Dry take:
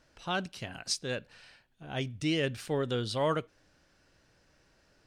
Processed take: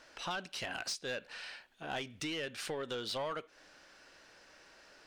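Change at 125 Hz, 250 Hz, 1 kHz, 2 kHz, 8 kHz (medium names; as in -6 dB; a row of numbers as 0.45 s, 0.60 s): -15.0 dB, -10.5 dB, -4.5 dB, -2.0 dB, -4.0 dB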